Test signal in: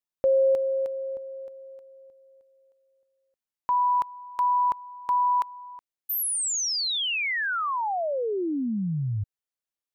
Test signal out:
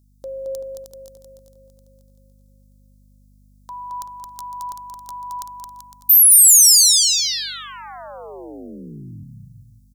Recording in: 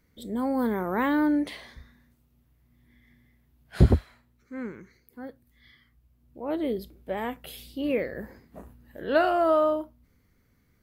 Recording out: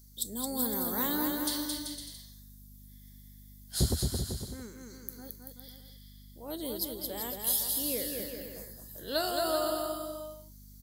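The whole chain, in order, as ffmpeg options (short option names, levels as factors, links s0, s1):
-af "aeval=exprs='val(0)+0.00562*(sin(2*PI*50*n/s)+sin(2*PI*2*50*n/s)/2+sin(2*PI*3*50*n/s)/3+sin(2*PI*4*50*n/s)/4+sin(2*PI*5*50*n/s)/5)':c=same,aecho=1:1:220|385|508.8|601.6|671.2:0.631|0.398|0.251|0.158|0.1,aexciter=amount=12.7:drive=8.4:freq=3800,volume=0.299"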